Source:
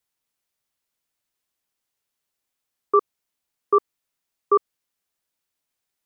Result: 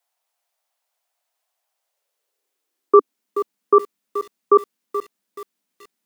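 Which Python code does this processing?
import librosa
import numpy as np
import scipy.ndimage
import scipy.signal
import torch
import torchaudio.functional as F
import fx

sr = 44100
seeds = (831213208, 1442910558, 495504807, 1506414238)

y = fx.filter_sweep_highpass(x, sr, from_hz=700.0, to_hz=210.0, start_s=1.72, end_s=3.39, q=3.8)
y = fx.echo_crushed(y, sr, ms=428, feedback_pct=35, bits=6, wet_db=-11.5)
y = y * 10.0 ** (3.0 / 20.0)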